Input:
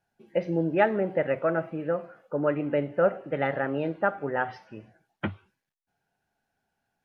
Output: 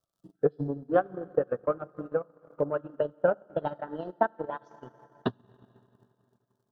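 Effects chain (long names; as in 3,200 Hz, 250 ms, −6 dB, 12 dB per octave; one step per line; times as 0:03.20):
gliding playback speed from 80% → 130%
reverb reduction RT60 1.3 s
surface crackle 130 per second −60 dBFS
Butterworth band-reject 2,200 Hz, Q 1.2
on a send at −7.5 dB: convolution reverb RT60 3.0 s, pre-delay 4 ms
on the sum: transient designer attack +12 dB, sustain −12 dB
level −8.5 dB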